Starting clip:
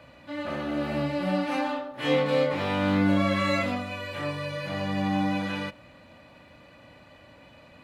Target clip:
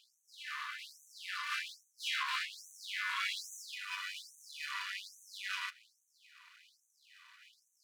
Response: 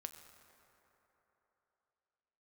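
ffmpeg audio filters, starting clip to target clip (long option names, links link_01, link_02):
-af "aeval=exprs='max(val(0),0)':channel_layout=same,afftfilt=real='re*gte(b*sr/1024,910*pow(6000/910,0.5+0.5*sin(2*PI*1.2*pts/sr)))':imag='im*gte(b*sr/1024,910*pow(6000/910,0.5+0.5*sin(2*PI*1.2*pts/sr)))':win_size=1024:overlap=0.75,volume=1.5dB"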